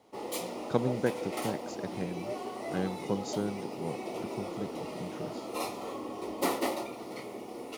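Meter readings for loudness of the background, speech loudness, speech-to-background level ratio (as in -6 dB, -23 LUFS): -37.5 LUFS, -37.0 LUFS, 0.5 dB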